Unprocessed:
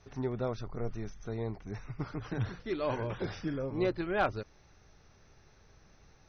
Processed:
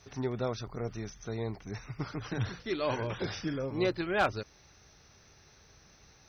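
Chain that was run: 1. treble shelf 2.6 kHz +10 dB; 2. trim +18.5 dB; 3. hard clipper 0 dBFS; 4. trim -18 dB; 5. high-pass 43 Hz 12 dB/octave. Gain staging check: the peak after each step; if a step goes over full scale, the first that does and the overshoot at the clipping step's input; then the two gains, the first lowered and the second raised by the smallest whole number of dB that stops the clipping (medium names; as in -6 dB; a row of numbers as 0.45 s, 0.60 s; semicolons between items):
-15.0 dBFS, +3.5 dBFS, 0.0 dBFS, -18.0 dBFS, -16.5 dBFS; step 2, 3.5 dB; step 2 +14.5 dB, step 4 -14 dB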